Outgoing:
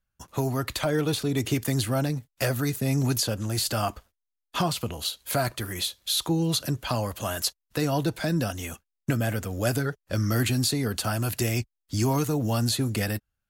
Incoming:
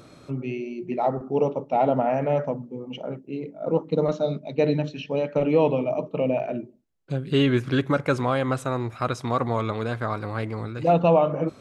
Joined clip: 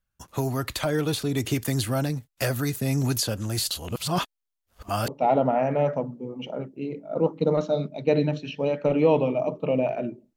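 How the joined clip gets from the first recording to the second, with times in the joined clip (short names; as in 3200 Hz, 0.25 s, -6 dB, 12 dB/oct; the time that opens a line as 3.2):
outgoing
3.71–5.08 reverse
5.08 switch to incoming from 1.59 s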